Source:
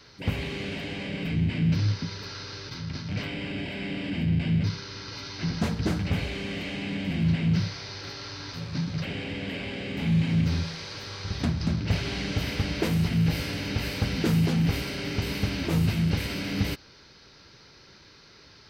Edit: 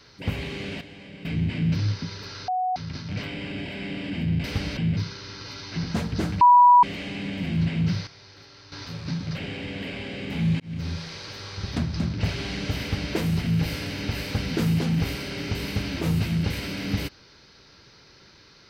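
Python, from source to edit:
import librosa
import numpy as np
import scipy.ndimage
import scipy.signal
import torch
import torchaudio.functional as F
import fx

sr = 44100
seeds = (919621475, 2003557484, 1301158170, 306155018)

y = fx.edit(x, sr, fx.clip_gain(start_s=0.81, length_s=0.44, db=-10.0),
    fx.bleep(start_s=2.48, length_s=0.28, hz=739.0, db=-22.0),
    fx.bleep(start_s=6.08, length_s=0.42, hz=977.0, db=-10.0),
    fx.clip_gain(start_s=7.74, length_s=0.65, db=-10.5),
    fx.fade_in_span(start_s=10.27, length_s=0.61, curve='qsin'),
    fx.duplicate(start_s=12.48, length_s=0.33, to_s=4.44), tone=tone)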